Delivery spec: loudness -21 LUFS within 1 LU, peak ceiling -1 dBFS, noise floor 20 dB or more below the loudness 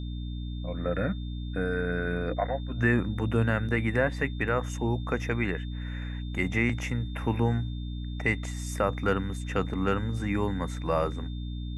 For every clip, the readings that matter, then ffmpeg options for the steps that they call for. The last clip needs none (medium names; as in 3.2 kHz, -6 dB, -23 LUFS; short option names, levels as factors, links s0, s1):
hum 60 Hz; highest harmonic 300 Hz; hum level -32 dBFS; steady tone 3.6 kHz; tone level -50 dBFS; loudness -29.5 LUFS; peak level -11.0 dBFS; loudness target -21.0 LUFS
-> -af "bandreject=f=60:t=h:w=6,bandreject=f=120:t=h:w=6,bandreject=f=180:t=h:w=6,bandreject=f=240:t=h:w=6,bandreject=f=300:t=h:w=6"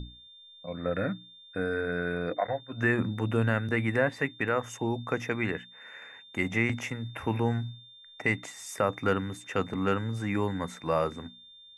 hum not found; steady tone 3.6 kHz; tone level -50 dBFS
-> -af "bandreject=f=3600:w=30"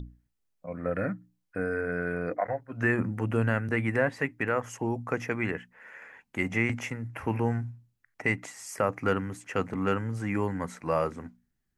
steady tone not found; loudness -30.5 LUFS; peak level -12.0 dBFS; loudness target -21.0 LUFS
-> -af "volume=2.99"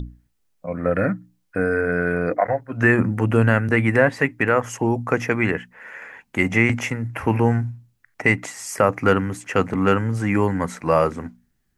loudness -21.0 LUFS; peak level -2.5 dBFS; noise floor -69 dBFS